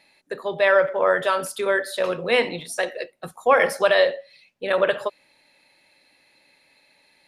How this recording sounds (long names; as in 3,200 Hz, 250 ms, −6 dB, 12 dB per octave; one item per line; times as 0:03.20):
background noise floor −62 dBFS
spectral slope −3.0 dB per octave